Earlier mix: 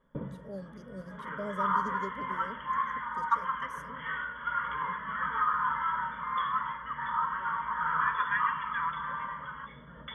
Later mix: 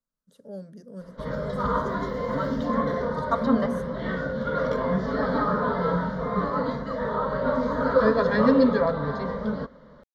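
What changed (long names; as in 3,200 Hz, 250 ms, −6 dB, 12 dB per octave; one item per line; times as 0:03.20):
speech +3.0 dB
first sound: muted
second sound: remove linear-phase brick-wall band-pass 890–3,400 Hz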